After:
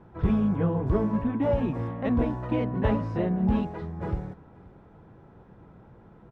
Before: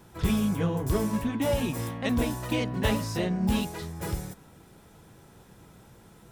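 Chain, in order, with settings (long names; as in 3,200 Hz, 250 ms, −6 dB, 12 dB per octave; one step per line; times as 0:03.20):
low-pass filter 1,300 Hz 12 dB per octave
single-tap delay 531 ms −23 dB
level +2 dB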